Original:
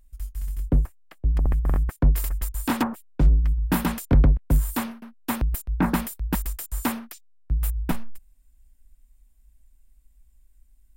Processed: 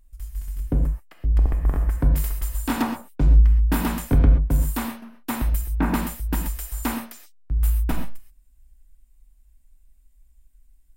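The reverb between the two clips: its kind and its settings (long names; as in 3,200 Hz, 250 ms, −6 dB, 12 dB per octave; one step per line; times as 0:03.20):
reverb whose tail is shaped and stops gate 150 ms flat, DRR 3 dB
level −1.5 dB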